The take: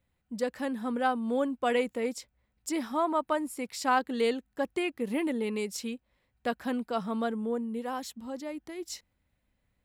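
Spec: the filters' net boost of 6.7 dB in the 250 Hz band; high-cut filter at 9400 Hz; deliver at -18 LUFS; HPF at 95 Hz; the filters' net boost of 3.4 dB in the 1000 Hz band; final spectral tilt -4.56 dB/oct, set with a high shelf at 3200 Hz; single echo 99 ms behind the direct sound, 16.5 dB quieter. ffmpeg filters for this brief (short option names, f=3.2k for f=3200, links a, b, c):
-af "highpass=95,lowpass=9.4k,equalizer=f=250:t=o:g=7.5,equalizer=f=1k:t=o:g=3.5,highshelf=f=3.2k:g=4.5,aecho=1:1:99:0.15,volume=9.5dB"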